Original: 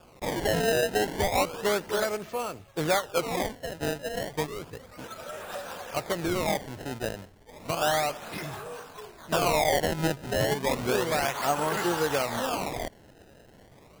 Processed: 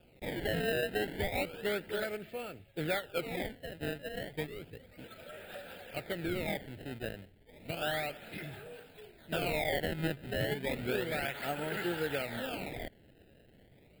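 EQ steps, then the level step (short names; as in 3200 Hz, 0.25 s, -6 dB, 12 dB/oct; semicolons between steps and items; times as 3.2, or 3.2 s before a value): dynamic EQ 1400 Hz, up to +6 dB, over -45 dBFS, Q 1.8; bell 11000 Hz -4.5 dB 0.44 oct; fixed phaser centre 2600 Hz, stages 4; -5.5 dB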